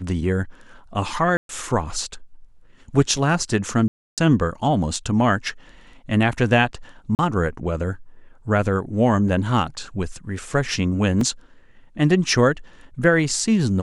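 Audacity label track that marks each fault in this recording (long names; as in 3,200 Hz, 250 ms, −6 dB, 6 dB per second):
1.370000	1.490000	drop-out 122 ms
3.880000	4.180000	drop-out 297 ms
7.150000	7.190000	drop-out 39 ms
11.210000	11.210000	drop-out 3 ms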